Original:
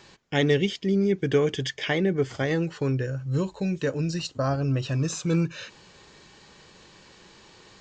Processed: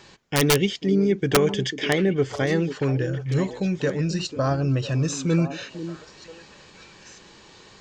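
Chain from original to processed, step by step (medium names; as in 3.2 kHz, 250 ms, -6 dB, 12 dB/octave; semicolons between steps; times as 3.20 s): integer overflow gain 12.5 dB; repeats whose band climbs or falls 493 ms, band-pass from 280 Hz, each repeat 1.4 oct, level -7 dB; trim +2.5 dB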